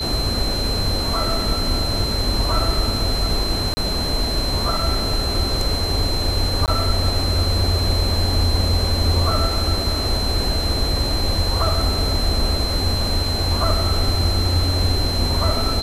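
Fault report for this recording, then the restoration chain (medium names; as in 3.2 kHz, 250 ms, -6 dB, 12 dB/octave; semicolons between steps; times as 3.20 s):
whine 4.1 kHz -24 dBFS
3.74–3.77 s: dropout 30 ms
6.66–6.68 s: dropout 18 ms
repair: band-stop 4.1 kHz, Q 30; interpolate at 3.74 s, 30 ms; interpolate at 6.66 s, 18 ms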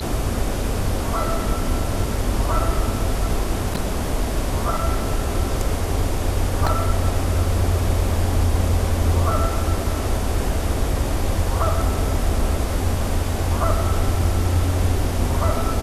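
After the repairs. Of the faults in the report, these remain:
nothing left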